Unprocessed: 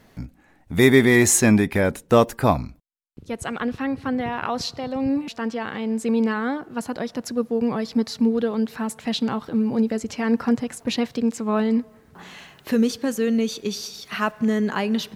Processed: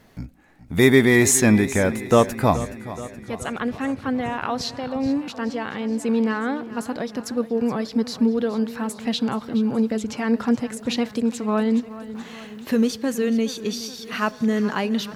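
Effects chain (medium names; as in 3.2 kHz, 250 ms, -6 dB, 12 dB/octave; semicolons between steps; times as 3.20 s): modulated delay 424 ms, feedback 61%, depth 60 cents, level -15.5 dB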